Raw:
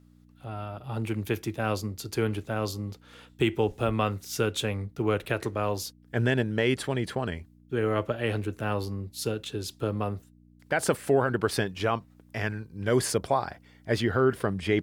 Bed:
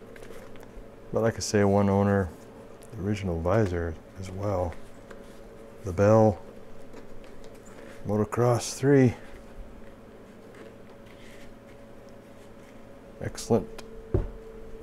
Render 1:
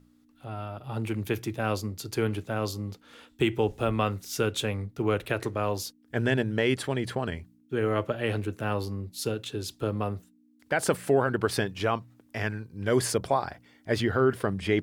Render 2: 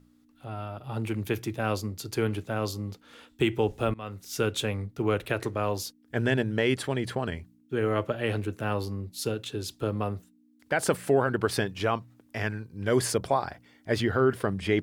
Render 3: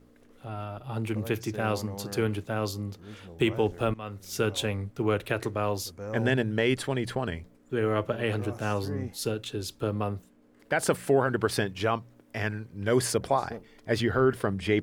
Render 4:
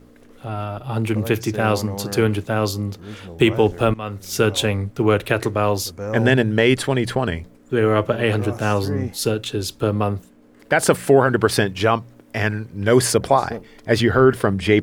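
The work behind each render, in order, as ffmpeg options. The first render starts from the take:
ffmpeg -i in.wav -af "bandreject=frequency=60:width_type=h:width=4,bandreject=frequency=120:width_type=h:width=4,bandreject=frequency=180:width_type=h:width=4" out.wav
ffmpeg -i in.wav -filter_complex "[0:a]asplit=2[link_01][link_02];[link_01]atrim=end=3.94,asetpts=PTS-STARTPTS,afade=type=out:start_time=3.936:duration=0.004:curve=hsin:silence=0.0668344[link_03];[link_02]atrim=start=3.94,asetpts=PTS-STARTPTS,afade=type=in:duration=0.49:silence=0.0668344[link_04];[link_03][link_04]concat=n=2:v=0:a=1" out.wav
ffmpeg -i in.wav -i bed.wav -filter_complex "[1:a]volume=-17dB[link_01];[0:a][link_01]amix=inputs=2:normalize=0" out.wav
ffmpeg -i in.wav -af "volume=9.5dB" out.wav

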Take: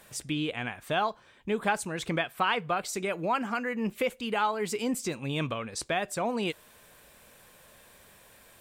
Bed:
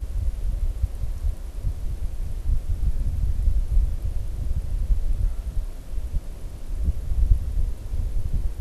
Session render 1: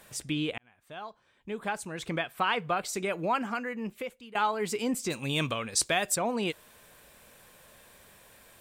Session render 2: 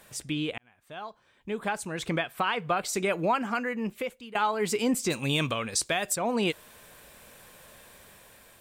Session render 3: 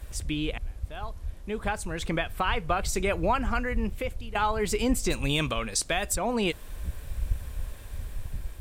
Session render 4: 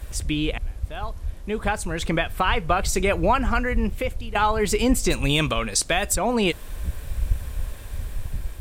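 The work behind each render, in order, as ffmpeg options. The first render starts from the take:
ffmpeg -i in.wav -filter_complex "[0:a]asettb=1/sr,asplit=3[link_01][link_02][link_03];[link_01]atrim=end=5.104[link_04];[link_02]atrim=start=5.1:end=6.16,asetpts=PTS-STARTPTS,afade=type=in:duration=0.004:curve=qsin,afade=type=out:start_time=1.056:duration=0.004:curve=qsin,highshelf=frequency=3400:gain=12[link_05];[link_03]atrim=start=6.156[link_06];[link_04][link_05]acrossfade=duration=0.004:curve1=hsin:curve2=qsin[link_07];[link_07][link_06]acrossfade=duration=0.004:curve1=qsin:curve2=hsin,asplit=3[link_08][link_09][link_10];[link_08]atrim=end=0.58,asetpts=PTS-STARTPTS,afade=type=out:start_time=0.576:duration=0.004:curve=hsin[link_11];[link_09]atrim=start=0.58:end=4.35,asetpts=PTS-STARTPTS,afade=type=in:duration=2.09,afade=type=out:start_time=2.76:duration=1.01:silence=0.112202[link_12];[link_10]atrim=start=4.35,asetpts=PTS-STARTPTS,afade=type=in:duration=0.004:curve=hsin:silence=0.112202[link_13];[link_11][link_12][link_13]concat=n=3:v=0:a=1" out.wav
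ffmpeg -i in.wav -af "dynaudnorm=framelen=450:gausssize=5:maxgain=4dB,alimiter=limit=-16dB:level=0:latency=1:release=238" out.wav
ffmpeg -i in.wav -i bed.wav -filter_complex "[1:a]volume=-10dB[link_01];[0:a][link_01]amix=inputs=2:normalize=0" out.wav
ffmpeg -i in.wav -af "volume=5.5dB" out.wav

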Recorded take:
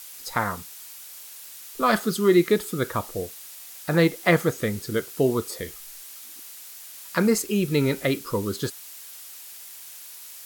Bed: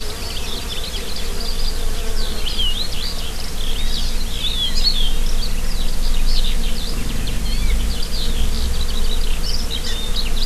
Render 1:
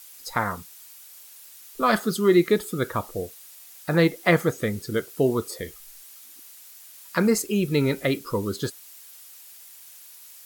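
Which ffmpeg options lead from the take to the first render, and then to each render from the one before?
ffmpeg -i in.wav -af "afftdn=noise_reduction=6:noise_floor=-43" out.wav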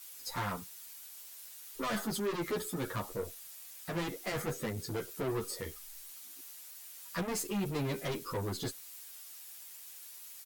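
ffmpeg -i in.wav -filter_complex "[0:a]aeval=exprs='(tanh(28.2*val(0)+0.1)-tanh(0.1))/28.2':channel_layout=same,asplit=2[link_01][link_02];[link_02]adelay=9.9,afreqshift=0.86[link_03];[link_01][link_03]amix=inputs=2:normalize=1" out.wav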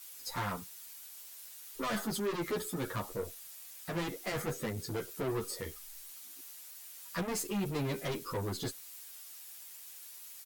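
ffmpeg -i in.wav -af anull out.wav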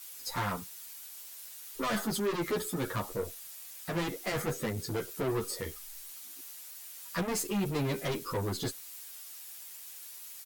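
ffmpeg -i in.wav -af "volume=3dB" out.wav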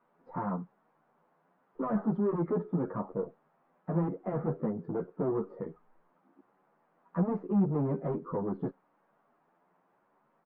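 ffmpeg -i in.wav -af "lowpass=frequency=1100:width=0.5412,lowpass=frequency=1100:width=1.3066,lowshelf=frequency=120:width_type=q:width=3:gain=-11" out.wav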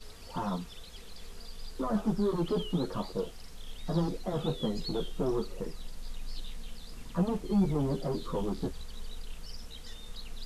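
ffmpeg -i in.wav -i bed.wav -filter_complex "[1:a]volume=-23dB[link_01];[0:a][link_01]amix=inputs=2:normalize=0" out.wav

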